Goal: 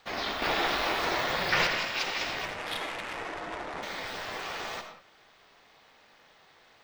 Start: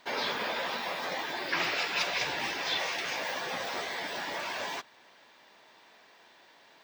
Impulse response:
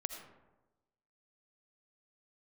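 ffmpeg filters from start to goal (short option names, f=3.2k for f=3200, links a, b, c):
-filter_complex "[0:a]asettb=1/sr,asplit=3[a][b][c];[a]atrim=end=2.454[d];[b]atrim=start=2.45:end=3.83,asetpts=PTS-STARTPTS,afade=t=in:d=0.004:c=qsin,afade=t=out:st=1.376:d=0.004:c=qsin,adynamicsmooth=sensitivity=4.5:basefreq=780[e];[c]atrim=start=3.826[f];[d][e]acrossfade=d=0.004:c1=hsin:c2=qsin[g];[g][f]acrossfade=d=0.004:c1=qsin:c2=hsin,aeval=exprs='val(0)*sin(2*PI*190*n/s)':c=same,asettb=1/sr,asplit=3[h][i][j];[h]atrim=end=0.424[k];[i]atrim=start=0.42:end=1.67,asetpts=PTS-STARTPTS,afade=t=in:d=0.004:c=qsin,afade=t=out:st=1.246:d=0.004:c=qsin,acontrast=64[l];[j]atrim=start=1.666[m];[k][l]acrossfade=d=0.004:c1=hsin:c2=qsin[n];[n][m]acrossfade=d=0.004:c1=qsin:c2=hsin[o];[1:a]atrim=start_sample=2205,afade=t=out:st=0.26:d=0.01,atrim=end_sample=11907[p];[o][p]afir=irnorm=-1:irlink=0,volume=2.5dB"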